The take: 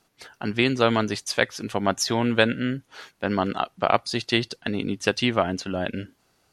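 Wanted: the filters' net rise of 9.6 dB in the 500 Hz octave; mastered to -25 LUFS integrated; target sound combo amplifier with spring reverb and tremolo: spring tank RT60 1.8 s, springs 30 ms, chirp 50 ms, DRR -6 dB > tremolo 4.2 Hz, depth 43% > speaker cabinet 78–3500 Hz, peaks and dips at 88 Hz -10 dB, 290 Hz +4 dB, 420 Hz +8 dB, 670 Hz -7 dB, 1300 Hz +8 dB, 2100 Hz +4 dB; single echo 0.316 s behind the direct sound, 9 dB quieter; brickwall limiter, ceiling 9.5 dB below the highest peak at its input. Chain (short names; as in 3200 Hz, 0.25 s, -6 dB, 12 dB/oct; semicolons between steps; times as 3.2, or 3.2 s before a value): bell 500 Hz +8.5 dB; limiter -9 dBFS; echo 0.316 s -9 dB; spring tank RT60 1.8 s, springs 30 ms, chirp 50 ms, DRR -6 dB; tremolo 4.2 Hz, depth 43%; speaker cabinet 78–3500 Hz, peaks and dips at 88 Hz -10 dB, 290 Hz +4 dB, 420 Hz +8 dB, 670 Hz -7 dB, 1300 Hz +8 dB, 2100 Hz +4 dB; gain -9.5 dB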